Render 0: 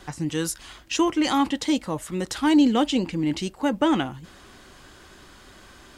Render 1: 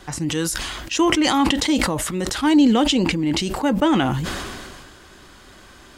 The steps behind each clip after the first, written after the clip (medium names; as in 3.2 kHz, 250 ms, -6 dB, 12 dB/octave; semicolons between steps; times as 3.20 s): decay stretcher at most 29 dB/s; trim +2.5 dB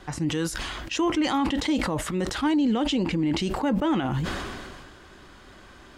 treble shelf 5.2 kHz -10.5 dB; peak limiter -15 dBFS, peak gain reduction 11.5 dB; trim -2 dB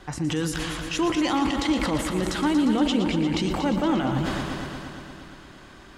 multi-head delay 117 ms, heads first and second, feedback 67%, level -11 dB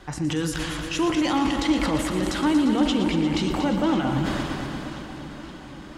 reverberation, pre-delay 3 ms, DRR 10.5 dB; modulated delay 520 ms, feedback 68%, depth 59 cents, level -15 dB